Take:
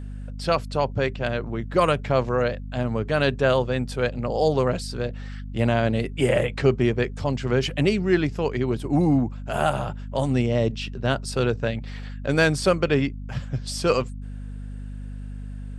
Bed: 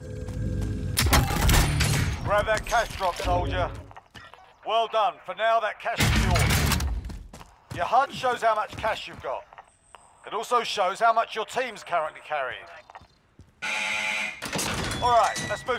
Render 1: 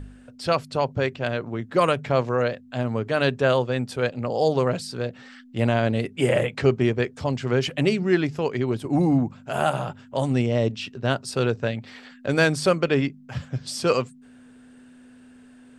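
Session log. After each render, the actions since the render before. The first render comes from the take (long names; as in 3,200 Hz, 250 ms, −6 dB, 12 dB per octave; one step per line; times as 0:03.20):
hum removal 50 Hz, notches 4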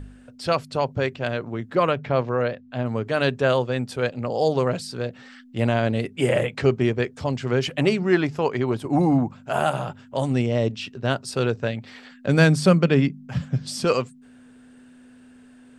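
0:01.75–0:02.86: high-frequency loss of the air 140 metres
0:07.68–0:09.59: dynamic equaliser 960 Hz, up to +6 dB, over −38 dBFS, Q 0.93
0:12.27–0:13.85: parametric band 180 Hz +11.5 dB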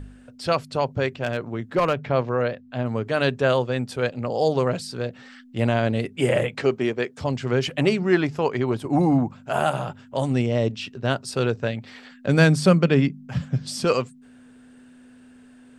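0:01.23–0:01.94: hard clipping −14.5 dBFS
0:06.61–0:07.18: Bessel high-pass filter 250 Hz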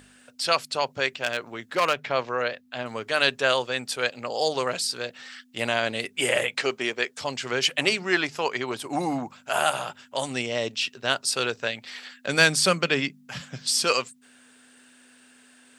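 high-pass filter 810 Hz 6 dB per octave
high-shelf EQ 2,000 Hz +10 dB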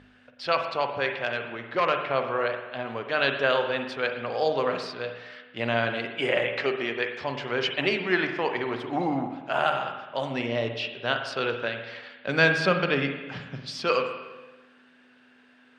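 high-frequency loss of the air 270 metres
spring reverb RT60 1.2 s, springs 43/51 ms, chirp 75 ms, DRR 5 dB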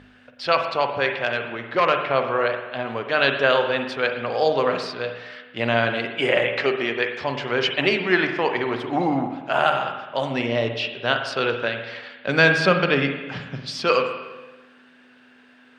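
level +5 dB
brickwall limiter −1 dBFS, peak gain reduction 1.5 dB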